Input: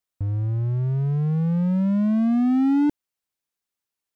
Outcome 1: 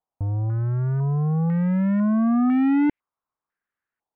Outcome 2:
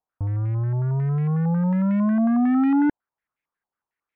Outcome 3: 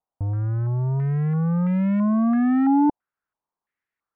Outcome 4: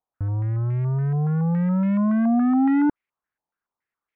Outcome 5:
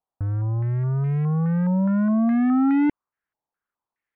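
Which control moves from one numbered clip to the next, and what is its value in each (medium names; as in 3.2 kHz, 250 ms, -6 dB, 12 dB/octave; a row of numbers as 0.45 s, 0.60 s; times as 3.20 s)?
step-sequenced low-pass, rate: 2 Hz, 11 Hz, 3 Hz, 7.1 Hz, 4.8 Hz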